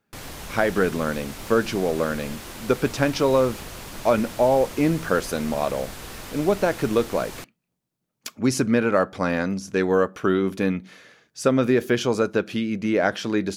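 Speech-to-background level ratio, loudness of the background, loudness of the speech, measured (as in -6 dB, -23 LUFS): 13.5 dB, -37.0 LUFS, -23.5 LUFS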